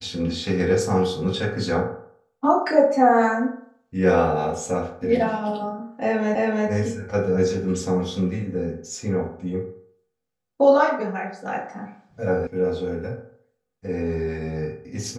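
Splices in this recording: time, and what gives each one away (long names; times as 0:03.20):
0:06.35: the same again, the last 0.33 s
0:12.47: cut off before it has died away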